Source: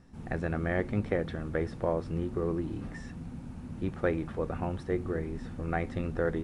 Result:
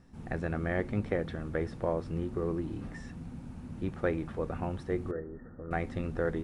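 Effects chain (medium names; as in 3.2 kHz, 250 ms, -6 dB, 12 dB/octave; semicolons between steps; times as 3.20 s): 5.11–5.71 s: rippled Chebyshev low-pass 1.9 kHz, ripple 9 dB; trim -1.5 dB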